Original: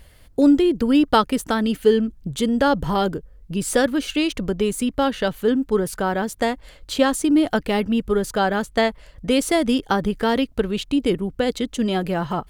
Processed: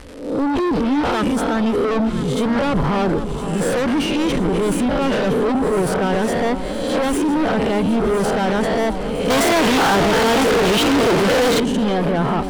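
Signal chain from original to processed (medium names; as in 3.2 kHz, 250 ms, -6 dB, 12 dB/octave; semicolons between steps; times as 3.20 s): reverse spectral sustain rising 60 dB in 0.60 s; transient shaper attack -8 dB, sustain +5 dB; level rider gain up to 5 dB; crackle 240 per s -26 dBFS; saturation -11.5 dBFS, distortion -15 dB; low-pass 11 kHz 24 dB/octave; sine folder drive 7 dB, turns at -9.5 dBFS; treble shelf 2.7 kHz -9.5 dB; band-stop 6.7 kHz, Q 21; echo whose repeats swap between lows and highs 505 ms, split 1.2 kHz, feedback 79%, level -9.5 dB; 9.30–11.60 s: overdrive pedal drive 35 dB, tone 6.4 kHz, clips at -4.5 dBFS; trim -6 dB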